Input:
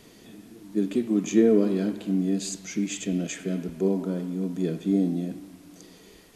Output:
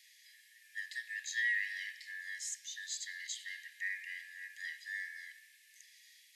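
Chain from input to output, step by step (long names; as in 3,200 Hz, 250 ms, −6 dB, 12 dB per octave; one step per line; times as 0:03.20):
band-splitting scrambler in four parts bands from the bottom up 4123
Butterworth high-pass 2,000 Hz 72 dB per octave
level −6 dB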